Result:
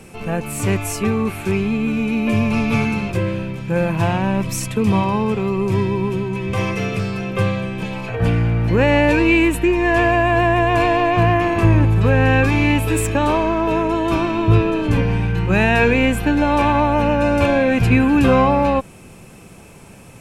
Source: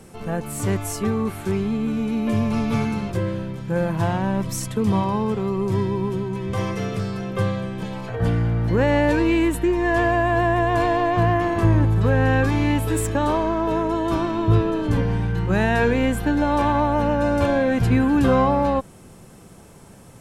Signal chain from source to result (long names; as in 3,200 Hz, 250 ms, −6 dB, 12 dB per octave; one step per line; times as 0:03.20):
parametric band 2,500 Hz +13 dB 0.28 octaves
level +3.5 dB